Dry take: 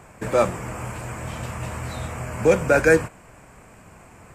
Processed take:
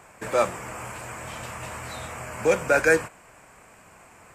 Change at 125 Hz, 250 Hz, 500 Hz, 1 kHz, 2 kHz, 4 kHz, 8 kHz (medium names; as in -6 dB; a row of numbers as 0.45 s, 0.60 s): -10.0 dB, -7.0 dB, -4.0 dB, -1.5 dB, -0.5 dB, 0.0 dB, 0.0 dB